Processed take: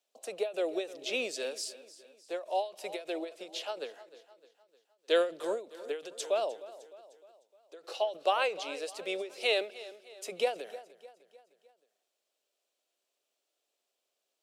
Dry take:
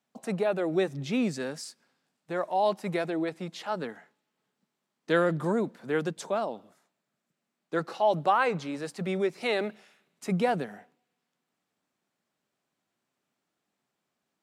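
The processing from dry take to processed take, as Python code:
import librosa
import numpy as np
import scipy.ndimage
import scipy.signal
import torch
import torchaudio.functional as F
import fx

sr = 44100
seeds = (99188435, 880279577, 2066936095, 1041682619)

y = scipy.signal.sosfilt(scipy.signal.butter(4, 460.0, 'highpass', fs=sr, output='sos'), x)
y = fx.band_shelf(y, sr, hz=1300.0, db=-10.5, octaves=1.7)
y = fx.echo_feedback(y, sr, ms=305, feedback_pct=50, wet_db=-17)
y = fx.dynamic_eq(y, sr, hz=2700.0, q=1.8, threshold_db=-52.0, ratio=4.0, max_db=5)
y = fx.end_taper(y, sr, db_per_s=170.0)
y = F.gain(torch.from_numpy(y), 2.5).numpy()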